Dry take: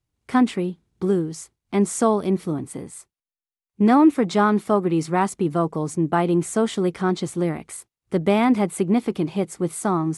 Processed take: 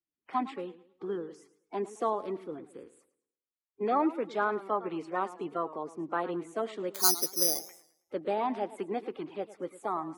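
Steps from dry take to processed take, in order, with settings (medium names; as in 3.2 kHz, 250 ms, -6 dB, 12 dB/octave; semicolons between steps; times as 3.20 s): coarse spectral quantiser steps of 30 dB; three-band isolator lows -21 dB, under 290 Hz, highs -16 dB, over 3.4 kHz; 6.94–7.60 s: careless resampling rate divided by 8×, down filtered, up zero stuff; modulated delay 107 ms, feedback 35%, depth 134 cents, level -16 dB; trim -9.5 dB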